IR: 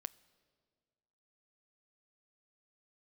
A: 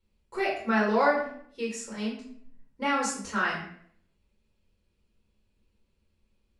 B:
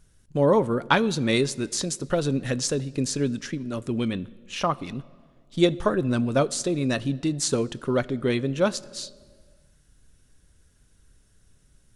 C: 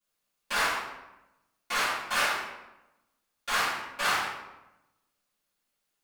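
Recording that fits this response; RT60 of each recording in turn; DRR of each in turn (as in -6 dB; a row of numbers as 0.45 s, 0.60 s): B; 0.65 s, 1.8 s, 1.0 s; -5.5 dB, 16.5 dB, -16.0 dB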